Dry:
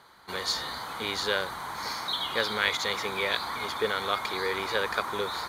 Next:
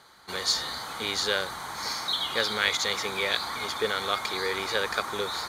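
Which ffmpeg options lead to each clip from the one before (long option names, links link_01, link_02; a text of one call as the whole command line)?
ffmpeg -i in.wav -af "equalizer=frequency=6700:width_type=o:width=1.4:gain=6.5,bandreject=frequency=990:width=14" out.wav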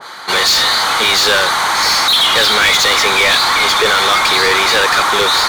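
ffmpeg -i in.wav -filter_complex "[0:a]asplit=2[link_01][link_02];[link_02]highpass=frequency=720:poles=1,volume=29dB,asoftclip=type=tanh:threshold=-8.5dB[link_03];[link_01][link_03]amix=inputs=2:normalize=0,lowpass=frequency=4000:poles=1,volume=-6dB,adynamicequalizer=threshold=0.0355:dfrequency=1700:dqfactor=0.7:tfrequency=1700:tqfactor=0.7:attack=5:release=100:ratio=0.375:range=1.5:mode=boostabove:tftype=highshelf,volume=4dB" out.wav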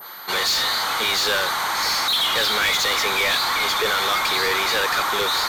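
ffmpeg -i in.wav -af "aeval=exprs='val(0)+0.0355*sin(2*PI*13000*n/s)':channel_layout=same,volume=-9dB" out.wav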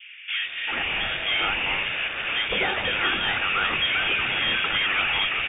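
ffmpeg -i in.wav -filter_complex "[0:a]acrusher=bits=7:mix=0:aa=0.000001,lowpass=frequency=3100:width_type=q:width=0.5098,lowpass=frequency=3100:width_type=q:width=0.6013,lowpass=frequency=3100:width_type=q:width=0.9,lowpass=frequency=3100:width_type=q:width=2.563,afreqshift=-3700,acrossover=split=240|1800[link_01][link_02][link_03];[link_02]adelay=390[link_04];[link_01]adelay=420[link_05];[link_05][link_04][link_03]amix=inputs=3:normalize=0" out.wav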